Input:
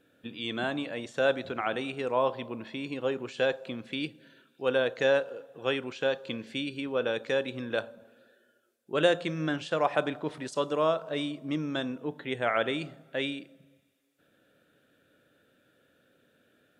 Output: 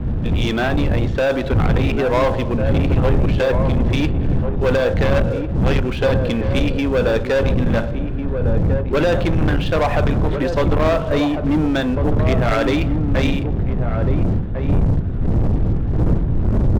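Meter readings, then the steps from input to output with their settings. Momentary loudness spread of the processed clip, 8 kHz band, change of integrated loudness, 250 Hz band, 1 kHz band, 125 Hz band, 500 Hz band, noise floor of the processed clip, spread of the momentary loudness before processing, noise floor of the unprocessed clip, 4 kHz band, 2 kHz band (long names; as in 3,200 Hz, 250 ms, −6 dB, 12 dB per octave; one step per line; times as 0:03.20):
3 LU, can't be measured, +12.0 dB, +16.0 dB, +9.5 dB, +26.0 dB, +10.0 dB, −22 dBFS, 10 LU, −69 dBFS, +6.0 dB, +8.0 dB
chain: wind on the microphone 120 Hz −29 dBFS
brickwall limiter −17.5 dBFS, peak gain reduction 10 dB
high-frequency loss of the air 260 metres
leveller curve on the samples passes 3
slap from a distant wall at 240 metres, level −6 dB
level +6 dB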